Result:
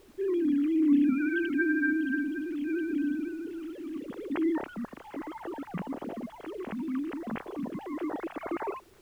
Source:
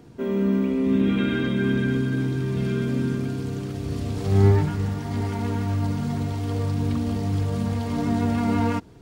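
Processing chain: formants replaced by sine waves; added noise pink -54 dBFS; trim -7.5 dB

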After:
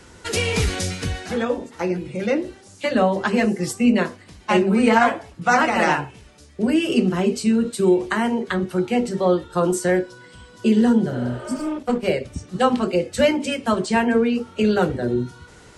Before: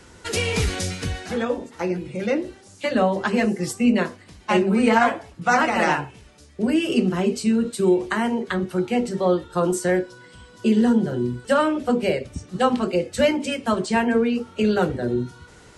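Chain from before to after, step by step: 11.56–12.08 s: power-law waveshaper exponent 1.4; 11.14–11.68 s: spectral replace 340–4400 Hz both; trim +1.5 dB

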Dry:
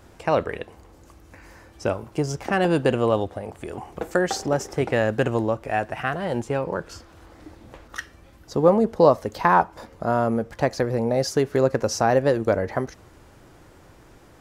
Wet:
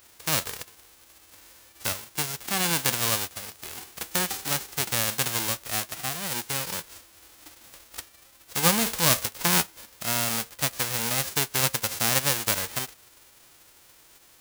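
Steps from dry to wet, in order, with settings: formants flattened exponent 0.1; 8.83–9.26 s: transient shaper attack -6 dB, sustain +11 dB; trim -5 dB

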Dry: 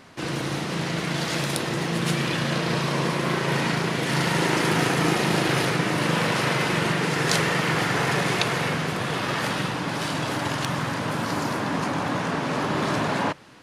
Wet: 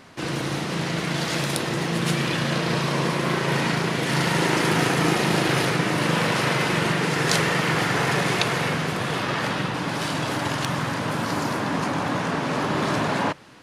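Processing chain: 9.22–9.73 s: treble shelf 9.2 kHz -> 5.4 kHz -8 dB; trim +1 dB

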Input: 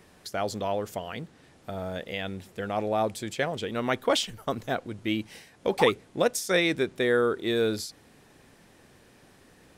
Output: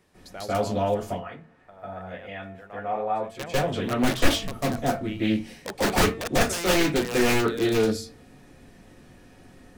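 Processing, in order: 1.03–3.35 s: three-band isolator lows -14 dB, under 600 Hz, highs -17 dB, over 2.1 kHz; de-hum 225.4 Hz, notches 17; integer overflow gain 16.5 dB; reverberation RT60 0.20 s, pre-delay 144 ms, DRR -10.5 dB; loudspeaker Doppler distortion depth 0.25 ms; trim -8.5 dB

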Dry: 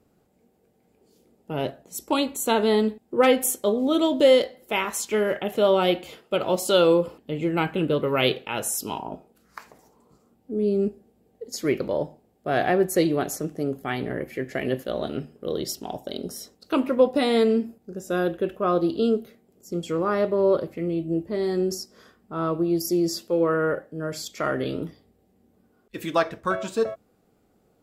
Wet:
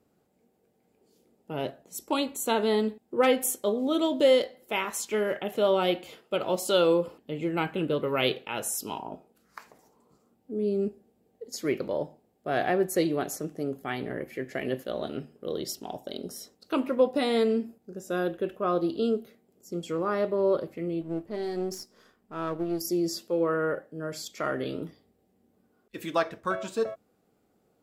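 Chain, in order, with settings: 21.01–22.81 s: partial rectifier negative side -7 dB; bass shelf 80 Hz -9.5 dB; trim -4 dB

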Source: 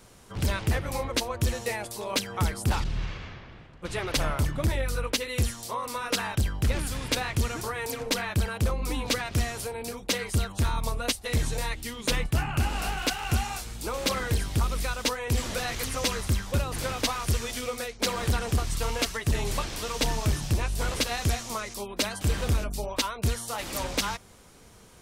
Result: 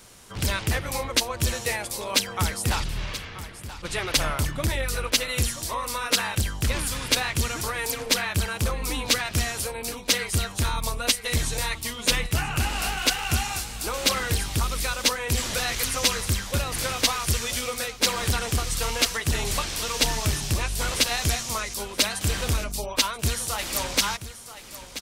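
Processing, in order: tilt shelf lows -4 dB, about 1.4 kHz; delay 980 ms -13.5 dB; trim +3.5 dB

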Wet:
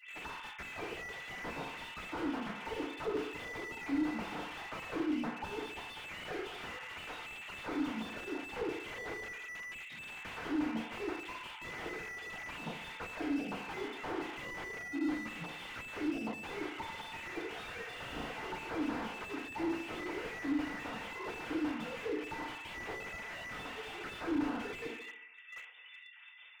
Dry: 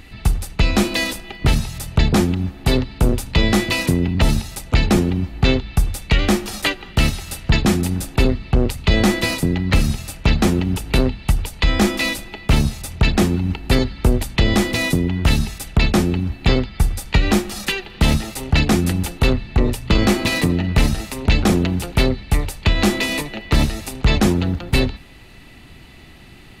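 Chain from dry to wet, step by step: formants replaced by sine waves; gate -40 dBFS, range -15 dB; differentiator; peak limiter -24 dBFS, peak gain reduction 10.5 dB; compression 8:1, threshold -47 dBFS, peak gain reduction 18.5 dB; 9.24–9.92 s: rippled Chebyshev high-pass 1.9 kHz, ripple 6 dB; 17.82–18.26 s: flutter echo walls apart 6.3 m, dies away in 1.1 s; FDN reverb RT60 0.71 s, low-frequency decay 0.85×, high-frequency decay 0.5×, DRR -9 dB; slew-rate limiter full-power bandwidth 6.9 Hz; trim +5.5 dB

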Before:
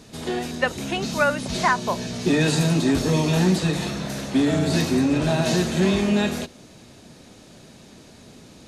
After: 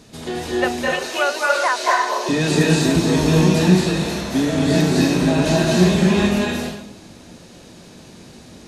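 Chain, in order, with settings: 0.66–2.29 s: inverse Chebyshev high-pass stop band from 190 Hz, stop band 40 dB; reverberation RT60 0.80 s, pre-delay 205 ms, DRR -2.5 dB

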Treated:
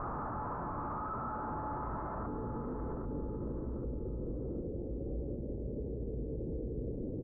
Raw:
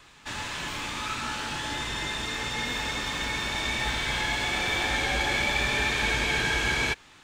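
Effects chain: one-bit comparator; Chebyshev low-pass 1.3 kHz, order 5, from 2.25 s 510 Hz; feedback delay 790 ms, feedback 24%, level -11 dB; peak limiter -36 dBFS, peak gain reduction 11 dB; echo from a far wall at 260 m, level -18 dB; trim +4.5 dB

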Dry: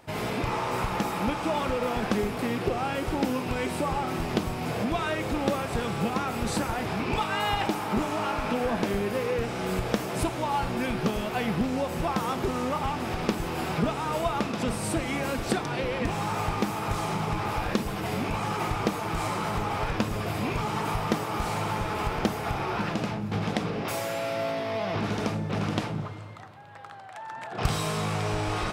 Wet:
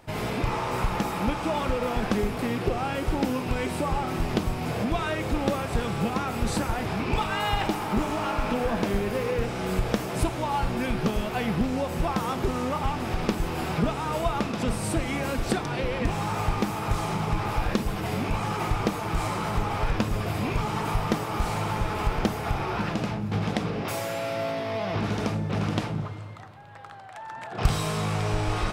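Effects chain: bass shelf 75 Hz +10 dB; 7.04–9.49 s: bit-crushed delay 128 ms, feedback 35%, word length 8-bit, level -13 dB

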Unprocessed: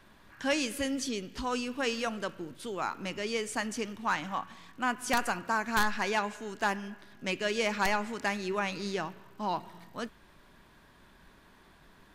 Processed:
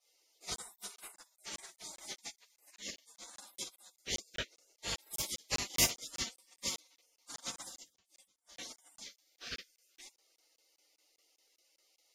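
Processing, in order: octave divider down 2 oct, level +2 dB; high-pass 1.3 kHz 12 dB/octave; hum 50 Hz, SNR 22 dB; 7.77–8.58 s: inverted gate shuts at -28 dBFS, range -27 dB; reverberation, pre-delay 3 ms, DRR -17.5 dB; spectral gate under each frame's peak -30 dB weak; crackling interface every 0.20 s, samples 1024, zero, from 0.56 s; upward expansion 1.5:1, over -54 dBFS; trim +2.5 dB

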